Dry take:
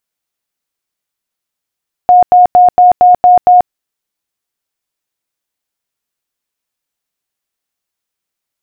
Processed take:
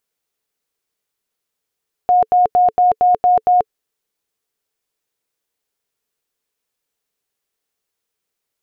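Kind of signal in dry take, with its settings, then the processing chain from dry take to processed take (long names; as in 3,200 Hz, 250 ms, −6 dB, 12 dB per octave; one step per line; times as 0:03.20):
tone bursts 721 Hz, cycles 99, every 0.23 s, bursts 7, −1.5 dBFS
parametric band 440 Hz +9.5 dB 0.32 octaves
brickwall limiter −8.5 dBFS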